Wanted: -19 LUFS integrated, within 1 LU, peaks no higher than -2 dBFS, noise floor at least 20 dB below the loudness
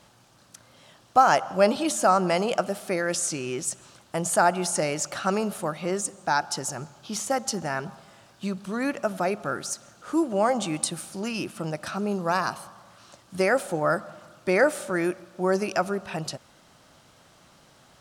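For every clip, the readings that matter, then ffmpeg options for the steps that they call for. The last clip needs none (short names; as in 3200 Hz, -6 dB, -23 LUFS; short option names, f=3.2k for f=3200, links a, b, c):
loudness -26.0 LUFS; peak -5.0 dBFS; loudness target -19.0 LUFS
-> -af "volume=7dB,alimiter=limit=-2dB:level=0:latency=1"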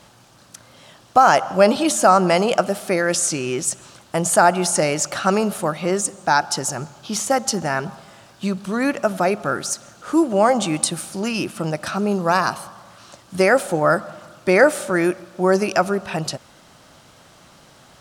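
loudness -19.5 LUFS; peak -2.0 dBFS; noise floor -50 dBFS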